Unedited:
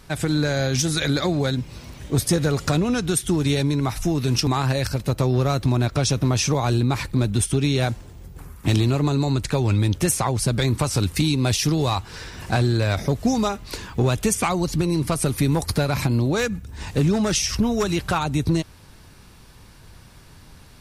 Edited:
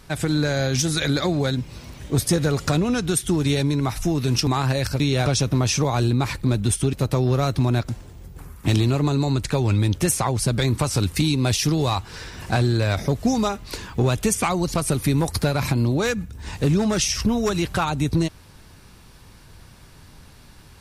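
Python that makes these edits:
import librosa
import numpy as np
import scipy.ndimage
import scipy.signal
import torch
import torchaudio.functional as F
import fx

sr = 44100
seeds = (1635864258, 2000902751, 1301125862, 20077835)

y = fx.edit(x, sr, fx.swap(start_s=5.0, length_s=0.96, other_s=7.63, other_length_s=0.26),
    fx.cut(start_s=14.75, length_s=0.34), tone=tone)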